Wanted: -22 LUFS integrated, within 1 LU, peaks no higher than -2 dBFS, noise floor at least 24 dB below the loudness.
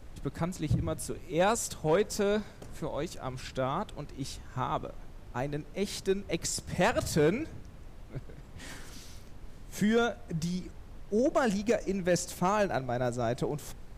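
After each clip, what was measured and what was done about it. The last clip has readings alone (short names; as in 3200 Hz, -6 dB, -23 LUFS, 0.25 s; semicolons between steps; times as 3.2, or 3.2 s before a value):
clipped 0.3%; flat tops at -19.0 dBFS; noise floor -48 dBFS; noise floor target -56 dBFS; loudness -31.5 LUFS; peak -19.0 dBFS; loudness target -22.0 LUFS
-> clip repair -19 dBFS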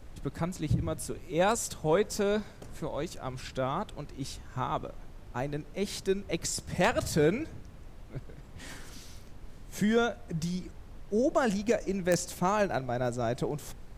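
clipped 0.0%; noise floor -48 dBFS; noise floor target -55 dBFS
-> noise print and reduce 7 dB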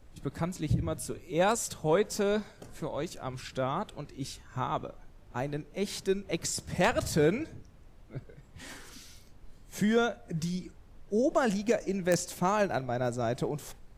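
noise floor -54 dBFS; noise floor target -56 dBFS
-> noise print and reduce 6 dB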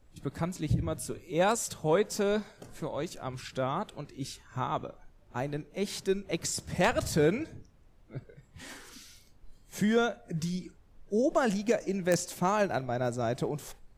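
noise floor -59 dBFS; loudness -31.5 LUFS; peak -10.0 dBFS; loudness target -22.0 LUFS
-> gain +9.5 dB; limiter -2 dBFS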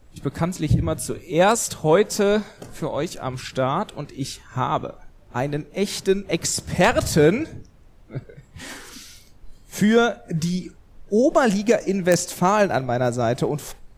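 loudness -22.0 LUFS; peak -2.0 dBFS; noise floor -50 dBFS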